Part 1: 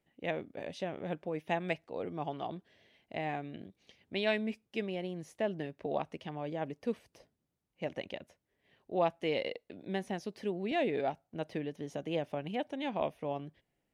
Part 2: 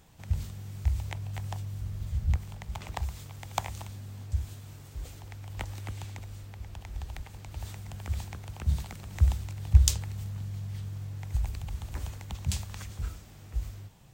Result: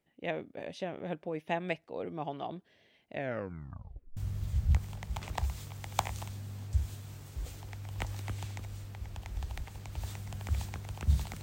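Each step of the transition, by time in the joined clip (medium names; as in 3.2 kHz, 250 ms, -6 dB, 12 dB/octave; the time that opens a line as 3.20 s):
part 1
3.10 s: tape stop 1.07 s
4.17 s: go over to part 2 from 1.76 s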